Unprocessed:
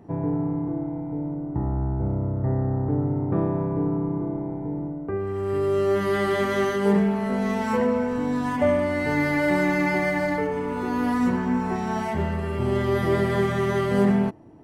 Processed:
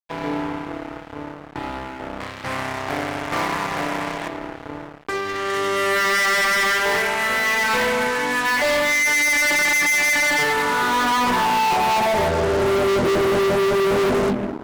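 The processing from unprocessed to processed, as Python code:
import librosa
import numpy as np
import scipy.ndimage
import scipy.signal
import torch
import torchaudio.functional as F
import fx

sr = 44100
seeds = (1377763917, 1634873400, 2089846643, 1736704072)

y = fx.lower_of_two(x, sr, delay_ms=0.96, at=(2.2, 4.28))
y = fx.filter_sweep_bandpass(y, sr, from_hz=2200.0, to_hz=380.0, start_s=10.13, end_s=13.06, q=1.9)
y = fx.hum_notches(y, sr, base_hz=50, count=6)
y = fx.rev_fdn(y, sr, rt60_s=1.2, lf_ratio=1.35, hf_ratio=0.9, size_ms=68.0, drr_db=9.0)
y = fx.fuzz(y, sr, gain_db=42.0, gate_db=-51.0)
y = F.gain(torch.from_numpy(y), -4.0).numpy()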